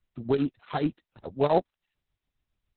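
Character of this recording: a buzz of ramps at a fixed pitch in blocks of 8 samples; tremolo triangle 7.2 Hz, depth 80%; Opus

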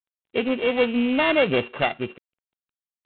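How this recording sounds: a buzz of ramps at a fixed pitch in blocks of 16 samples; G.726

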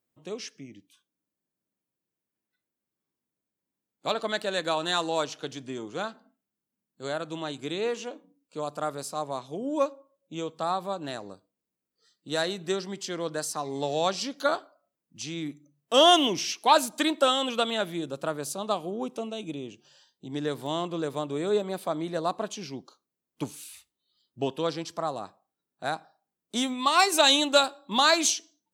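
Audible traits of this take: noise floor -88 dBFS; spectral tilt -2.5 dB/oct

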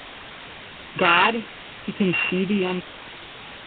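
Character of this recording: a buzz of ramps at a fixed pitch in blocks of 16 samples; random-step tremolo; a quantiser's noise floor 6-bit, dither triangular; Nellymoser

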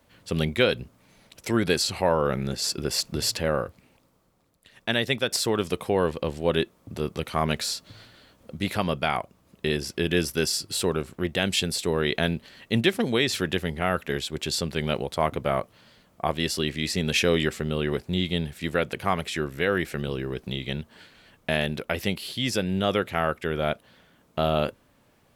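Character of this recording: noise floor -62 dBFS; spectral tilt -4.0 dB/oct

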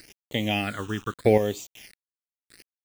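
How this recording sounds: chopped level 0.8 Hz, depth 60%, duty 10%; a quantiser's noise floor 8-bit, dither none; phasing stages 8, 0.78 Hz, lowest notch 590–1600 Hz

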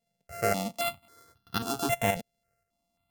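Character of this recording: a buzz of ramps at a fixed pitch in blocks of 64 samples; tremolo saw up 1.9 Hz, depth 55%; notches that jump at a steady rate 3.7 Hz 320–2200 Hz

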